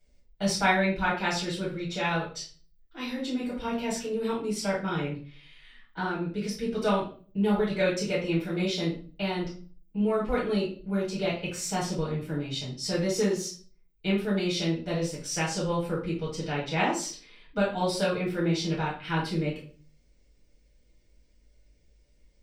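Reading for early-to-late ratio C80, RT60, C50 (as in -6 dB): 11.0 dB, 0.40 s, 5.5 dB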